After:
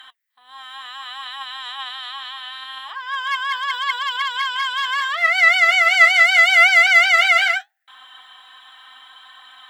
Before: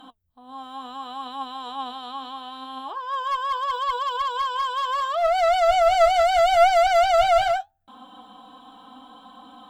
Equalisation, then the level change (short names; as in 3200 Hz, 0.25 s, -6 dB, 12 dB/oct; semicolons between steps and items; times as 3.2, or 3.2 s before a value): resonant high-pass 1900 Hz, resonance Q 9.3; +6.0 dB